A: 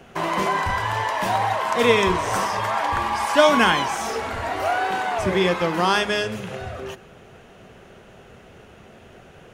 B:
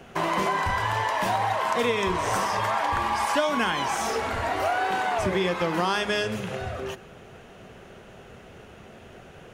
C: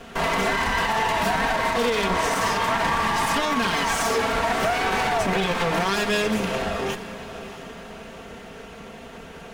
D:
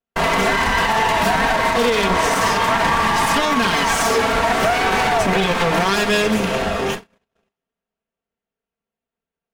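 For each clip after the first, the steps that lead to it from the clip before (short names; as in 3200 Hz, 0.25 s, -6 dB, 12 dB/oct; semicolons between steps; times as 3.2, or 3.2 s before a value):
compressor 6:1, threshold -21 dBFS, peak gain reduction 10.5 dB
minimum comb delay 4.4 ms; limiter -21.5 dBFS, peak gain reduction 8.5 dB; diffused feedback echo 0.644 s, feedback 42%, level -13 dB; gain +7.5 dB
gate -30 dBFS, range -54 dB; gain +5.5 dB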